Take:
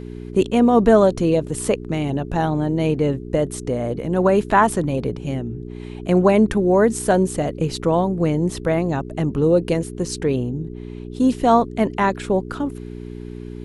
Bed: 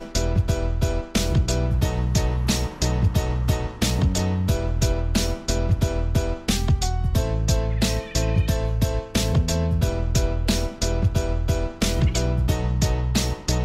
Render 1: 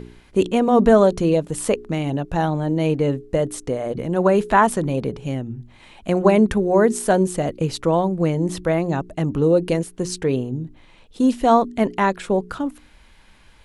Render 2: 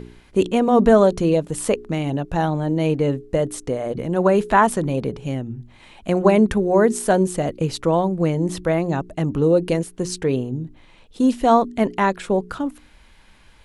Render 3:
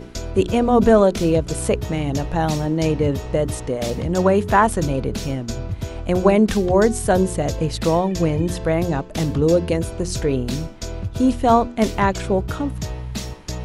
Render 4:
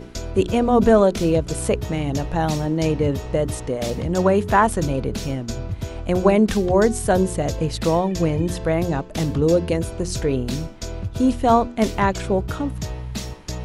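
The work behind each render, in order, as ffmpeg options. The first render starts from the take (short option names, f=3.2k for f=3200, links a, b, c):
-af "bandreject=f=60:t=h:w=4,bandreject=f=120:t=h:w=4,bandreject=f=180:t=h:w=4,bandreject=f=240:t=h:w=4,bandreject=f=300:t=h:w=4,bandreject=f=360:t=h:w=4,bandreject=f=420:t=h:w=4"
-af anull
-filter_complex "[1:a]volume=-6.5dB[a];[0:a][a]amix=inputs=2:normalize=0"
-af "volume=-1dB"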